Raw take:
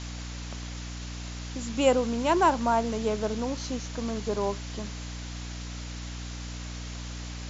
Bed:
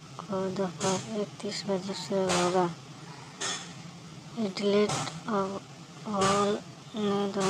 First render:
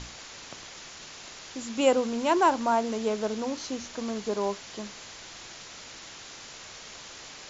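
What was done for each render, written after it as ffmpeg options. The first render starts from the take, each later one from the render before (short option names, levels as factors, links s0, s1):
-af "bandreject=f=60:t=h:w=6,bandreject=f=120:t=h:w=6,bandreject=f=180:t=h:w=6,bandreject=f=240:t=h:w=6,bandreject=f=300:t=h:w=6"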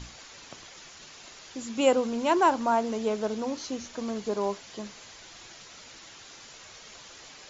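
-af "afftdn=nr=6:nf=-45"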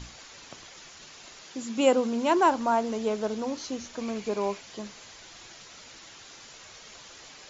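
-filter_complex "[0:a]asettb=1/sr,asplit=3[s0][s1][s2];[s0]atrim=end=1.434[s3];[s1]atrim=start=1.43:end=2.52,asetpts=PTS-STARTPTS,afade=t=in:d=0.004:c=qsin,afade=t=out:st=1.086:d=0.004:c=qsin,lowshelf=f=110:t=q:w=1.5:g=-12.5[s4];[s2]atrim=start=2.516[s5];[s3][s4]acrossfade=d=0.004:c1=hsin:c2=qsin[s6];[s6][s5]acrossfade=d=0.004:c1=qsin:c2=hsin,asettb=1/sr,asplit=3[s7][s8][s9];[s7]atrim=end=4.004[s10];[s8]atrim=start=4:end=4.61,asetpts=PTS-STARTPTS,afade=t=in:d=0.004:c=qsin,afade=t=out:st=0.606:d=0.004:c=qsin,equalizer=f=2400:w=5.4:g=10[s11];[s9]atrim=start=4.606[s12];[s10][s11]acrossfade=d=0.004:c1=hsin:c2=qsin[s13];[s13][s12]acrossfade=d=0.004:c1=qsin:c2=hsin"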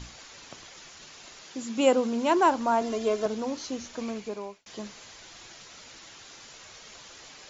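-filter_complex "[0:a]asettb=1/sr,asplit=3[s0][s1][s2];[s0]atrim=end=2.814[s3];[s1]atrim=start=2.81:end=3.26,asetpts=PTS-STARTPTS,afade=t=in:d=0.004:c=qsin,afade=t=out:st=0.446:d=0.004:c=qsin,aecho=1:1:2.9:0.82,atrim=end_sample=19845[s4];[s2]atrim=start=3.256[s5];[s3][s4]acrossfade=d=0.004:c1=hsin:c2=qsin[s6];[s6][s5]acrossfade=d=0.004:c1=qsin:c2=hsin,asplit=2[s7][s8];[s7]atrim=end=4.66,asetpts=PTS-STARTPTS,afade=t=out:st=4.01:d=0.65[s9];[s8]atrim=start=4.66,asetpts=PTS-STARTPTS,afade=t=in:d=0.004:c=hsin[s10];[s9][s10]concat=n=2:v=0:a=1"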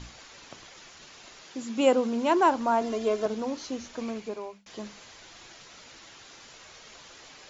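-af "highshelf=f=6000:g=-6,bandreject=f=50:t=h:w=6,bandreject=f=100:t=h:w=6,bandreject=f=150:t=h:w=6,bandreject=f=200:t=h:w=6"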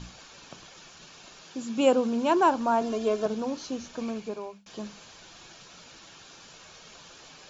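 -af "equalizer=f=170:t=o:w=0.4:g=8,bandreject=f=2000:w=7.3"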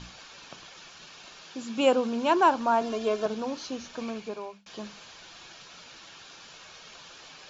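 -af "lowpass=5600,tiltshelf=f=640:g=-3.5"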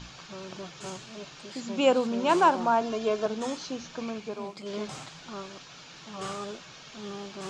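-filter_complex "[1:a]volume=0.282[s0];[0:a][s0]amix=inputs=2:normalize=0"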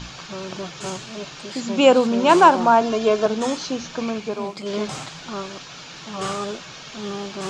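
-af "volume=2.82,alimiter=limit=0.891:level=0:latency=1"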